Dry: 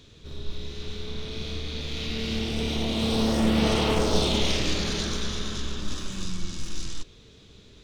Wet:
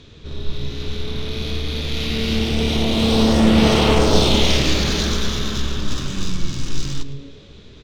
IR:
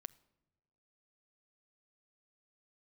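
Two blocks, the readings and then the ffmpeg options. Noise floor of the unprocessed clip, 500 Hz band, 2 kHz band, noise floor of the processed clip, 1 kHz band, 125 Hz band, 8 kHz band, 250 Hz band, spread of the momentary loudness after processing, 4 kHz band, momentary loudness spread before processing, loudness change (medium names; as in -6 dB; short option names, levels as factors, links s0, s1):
-52 dBFS, +8.0 dB, +8.0 dB, -43 dBFS, +8.0 dB, +9.5 dB, +6.5 dB, +8.5 dB, 15 LU, +8.0 dB, 15 LU, +8.0 dB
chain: -filter_complex "[0:a]asplit=5[s0][s1][s2][s3][s4];[s1]adelay=109,afreqshift=-140,volume=0.178[s5];[s2]adelay=218,afreqshift=-280,volume=0.0692[s6];[s3]adelay=327,afreqshift=-420,volume=0.0269[s7];[s4]adelay=436,afreqshift=-560,volume=0.0106[s8];[s0][s5][s6][s7][s8]amix=inputs=5:normalize=0,asplit=2[s9][s10];[1:a]atrim=start_sample=2205,asetrate=22491,aresample=44100[s11];[s10][s11]afir=irnorm=-1:irlink=0,volume=1.26[s12];[s9][s12]amix=inputs=2:normalize=0,adynamicsmooth=sensitivity=6:basefreq=5500,volume=1.26"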